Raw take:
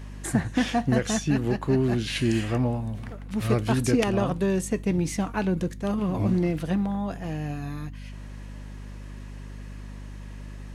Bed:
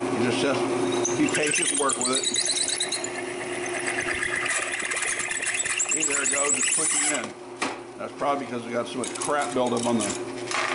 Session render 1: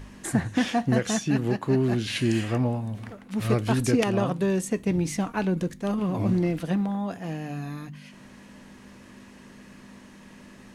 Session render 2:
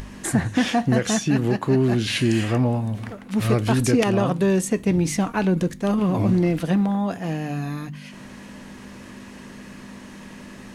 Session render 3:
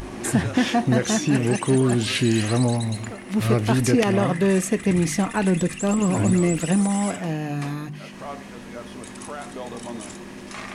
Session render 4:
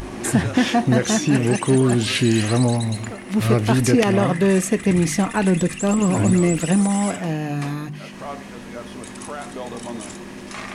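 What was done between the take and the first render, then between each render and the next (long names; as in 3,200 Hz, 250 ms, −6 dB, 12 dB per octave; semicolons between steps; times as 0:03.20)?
hum removal 50 Hz, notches 3
in parallel at 0 dB: brickwall limiter −20 dBFS, peak gain reduction 9 dB; on the sum: upward compression, threshold −35 dBFS
mix in bed −10.5 dB
level +2.5 dB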